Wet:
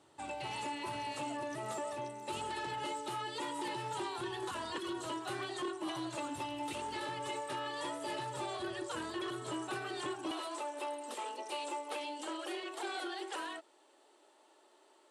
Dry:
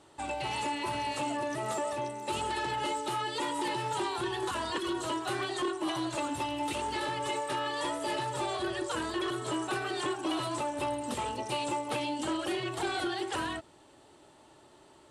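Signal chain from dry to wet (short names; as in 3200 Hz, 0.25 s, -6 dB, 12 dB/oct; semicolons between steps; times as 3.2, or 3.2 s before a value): HPF 79 Hz 24 dB/oct, from 10.31 s 340 Hz; gain -6.5 dB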